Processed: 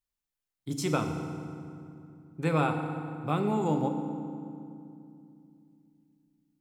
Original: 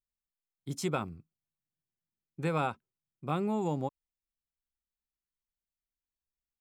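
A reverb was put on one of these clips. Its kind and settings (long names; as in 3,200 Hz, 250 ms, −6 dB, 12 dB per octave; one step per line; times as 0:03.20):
feedback delay network reverb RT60 2.5 s, low-frequency decay 1.55×, high-frequency decay 0.65×, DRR 4.5 dB
level +2.5 dB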